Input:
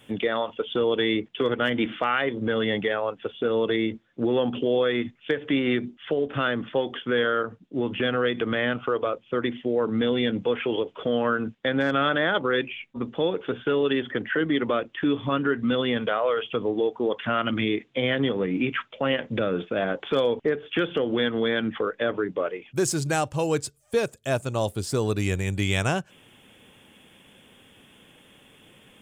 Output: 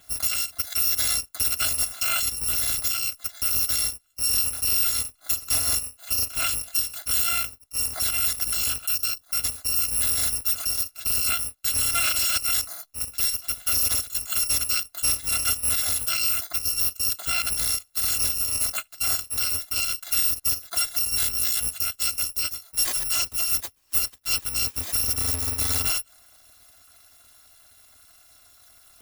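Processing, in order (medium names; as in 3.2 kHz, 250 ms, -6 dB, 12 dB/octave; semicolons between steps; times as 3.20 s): bit-reversed sample order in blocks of 256 samples; 8.71–9.28 s: band-stop 2.1 kHz, Q 9.8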